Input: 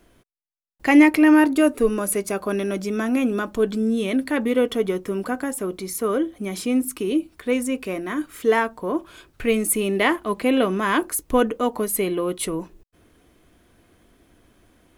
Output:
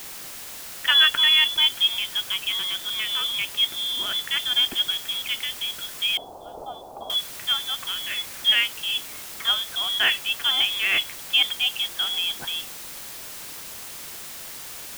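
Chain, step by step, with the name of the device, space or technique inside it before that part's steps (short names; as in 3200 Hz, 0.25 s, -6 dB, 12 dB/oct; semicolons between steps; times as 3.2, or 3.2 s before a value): scrambled radio voice (BPF 370–3000 Hz; inverted band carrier 3700 Hz; white noise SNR 12 dB); 6.17–7.1 EQ curve 190 Hz 0 dB, 790 Hz +14 dB, 1900 Hz -29 dB, 4500 Hz -20 dB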